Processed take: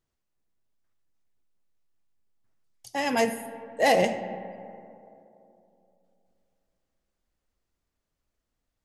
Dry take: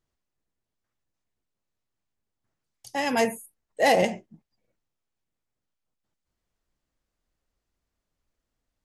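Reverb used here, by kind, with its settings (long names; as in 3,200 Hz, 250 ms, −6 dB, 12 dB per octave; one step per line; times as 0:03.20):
comb and all-pass reverb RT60 2.9 s, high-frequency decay 0.35×, pre-delay 15 ms, DRR 11 dB
level −1 dB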